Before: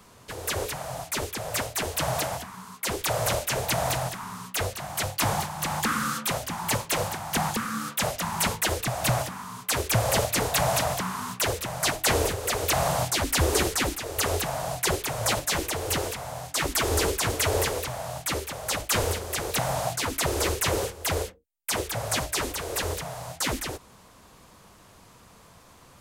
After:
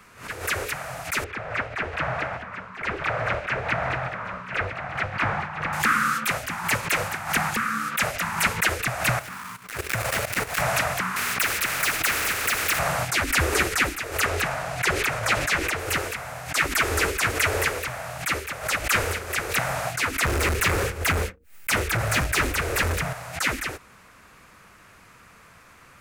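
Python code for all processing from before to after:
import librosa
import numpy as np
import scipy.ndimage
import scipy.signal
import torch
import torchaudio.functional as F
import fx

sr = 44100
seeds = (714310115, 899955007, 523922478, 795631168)

y = fx.chain(x, sr, fx.lowpass(hz=2200.0, slope=12),
    fx.echo_single(ms=989, db=-11.0), at=(1.24, 5.73))
y = fx.chain(y, sr, fx.dead_time(dead_ms=0.11),
    fx.high_shelf(hz=5300.0, db=7.0),
    fx.level_steps(step_db=13), at=(9.19, 10.62))
y = fx.chain(y, sr, fx.peak_eq(hz=14000.0, db=-5.5, octaves=2.3),
    fx.leveller(passes=2),
    fx.spectral_comp(ratio=4.0), at=(11.16, 12.79))
y = fx.chain(y, sr, fx.high_shelf(hz=9700.0, db=-10.0),
    fx.sustainer(db_per_s=21.0), at=(14.25, 15.79))
y = fx.chain(y, sr, fx.low_shelf(hz=260.0, db=9.5),
    fx.leveller(passes=1),
    fx.clip_hard(threshold_db=-20.5), at=(20.25, 23.13))
y = fx.band_shelf(y, sr, hz=1800.0, db=10.0, octaves=1.3)
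y = fx.pre_swell(y, sr, db_per_s=130.0)
y = F.gain(torch.from_numpy(y), -1.5).numpy()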